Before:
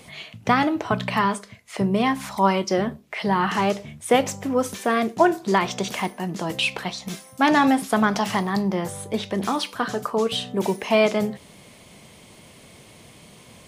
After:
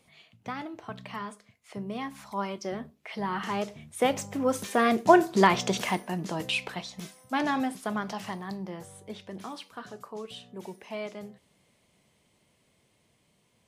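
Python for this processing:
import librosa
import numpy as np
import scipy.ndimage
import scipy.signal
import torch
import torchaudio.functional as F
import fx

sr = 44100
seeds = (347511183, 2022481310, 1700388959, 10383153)

y = fx.doppler_pass(x, sr, speed_mps=8, closest_m=5.4, pass_at_s=5.34)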